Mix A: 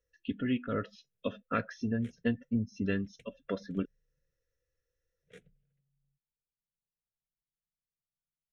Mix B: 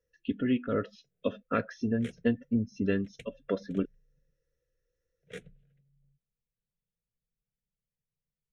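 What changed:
speech: add bell 400 Hz +5.5 dB 1.7 oct; background +11.0 dB

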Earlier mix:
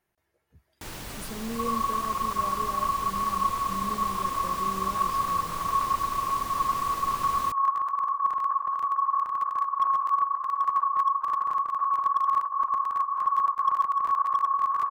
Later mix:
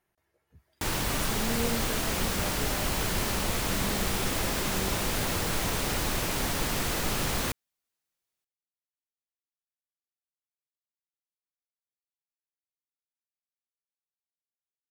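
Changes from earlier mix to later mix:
first sound +9.5 dB; second sound: muted

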